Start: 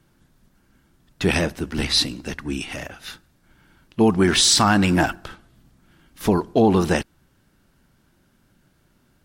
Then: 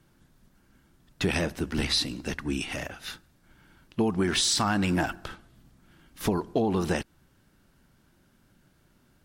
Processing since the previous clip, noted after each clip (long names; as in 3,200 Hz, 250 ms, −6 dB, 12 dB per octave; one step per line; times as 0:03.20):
downward compressor 4 to 1, threshold −21 dBFS, peak gain reduction 8.5 dB
level −2 dB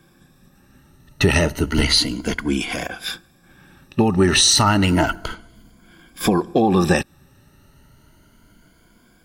rippled gain that drifts along the octave scale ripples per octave 1.8, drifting +0.31 Hz, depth 13 dB
level +8 dB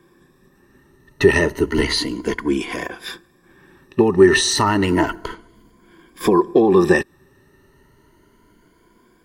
hollow resonant body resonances 390/1,000/1,800 Hz, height 14 dB, ringing for 25 ms
level −5.5 dB